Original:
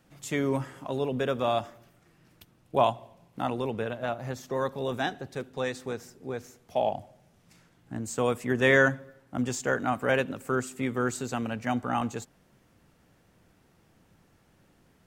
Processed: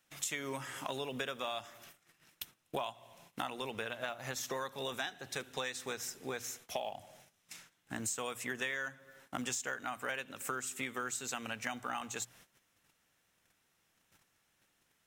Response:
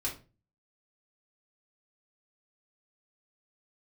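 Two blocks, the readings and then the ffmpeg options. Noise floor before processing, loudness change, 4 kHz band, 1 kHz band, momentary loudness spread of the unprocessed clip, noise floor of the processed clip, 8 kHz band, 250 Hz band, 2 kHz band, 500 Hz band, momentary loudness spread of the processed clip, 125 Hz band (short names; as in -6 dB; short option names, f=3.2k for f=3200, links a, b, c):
-64 dBFS, -10.0 dB, -1.5 dB, -10.0 dB, 13 LU, -76 dBFS, +2.0 dB, -14.5 dB, -9.0 dB, -14.0 dB, 11 LU, -16.5 dB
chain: -af "bandreject=f=60:t=h:w=6,bandreject=f=120:t=h:w=6,bandreject=f=180:t=h:w=6,agate=range=-16dB:threshold=-59dB:ratio=16:detection=peak,tiltshelf=f=970:g=-9.5,bandreject=f=4.6k:w=11,acrusher=bits=8:mode=log:mix=0:aa=0.000001,acompressor=threshold=-39dB:ratio=12,volume=4dB"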